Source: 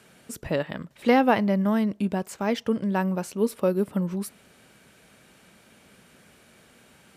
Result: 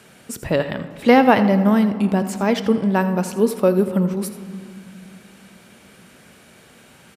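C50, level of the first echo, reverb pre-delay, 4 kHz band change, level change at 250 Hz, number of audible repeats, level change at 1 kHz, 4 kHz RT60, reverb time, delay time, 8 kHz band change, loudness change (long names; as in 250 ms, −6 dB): 10.5 dB, −14.5 dB, 4 ms, +7.0 dB, +7.0 dB, 1, +7.0 dB, 1.2 s, 2.5 s, 82 ms, +6.5 dB, +7.0 dB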